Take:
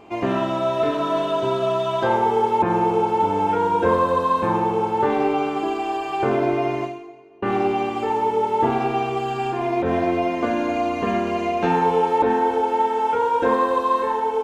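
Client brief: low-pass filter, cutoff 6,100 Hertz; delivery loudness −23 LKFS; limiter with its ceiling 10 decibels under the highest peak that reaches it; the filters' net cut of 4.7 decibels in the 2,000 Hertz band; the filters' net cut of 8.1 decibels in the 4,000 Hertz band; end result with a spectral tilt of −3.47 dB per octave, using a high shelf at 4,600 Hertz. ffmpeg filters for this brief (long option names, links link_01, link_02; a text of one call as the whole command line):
ffmpeg -i in.wav -af "lowpass=6100,equalizer=frequency=2000:width_type=o:gain=-3.5,equalizer=frequency=4000:width_type=o:gain=-5.5,highshelf=frequency=4600:gain=-8,volume=2.5dB,alimiter=limit=-14.5dB:level=0:latency=1" out.wav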